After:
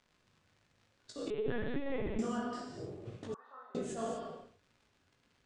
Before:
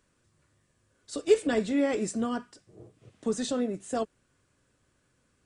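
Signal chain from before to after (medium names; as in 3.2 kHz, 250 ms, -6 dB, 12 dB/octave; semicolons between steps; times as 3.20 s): spectral sustain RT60 0.45 s; gate -54 dBFS, range -13 dB; slow attack 356 ms; compression 16:1, threshold -38 dBFS, peak gain reduction 17.5 dB; chorus 1.9 Hz, delay 17 ms, depth 5.1 ms; crackle 120 per s -59 dBFS; distance through air 100 m; gated-style reverb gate 270 ms flat, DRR 0.5 dB; 1.30–2.19 s: LPC vocoder at 8 kHz pitch kept; 3.34–3.75 s: Butterworth band-pass 1.1 kHz, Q 2.4; trim +7.5 dB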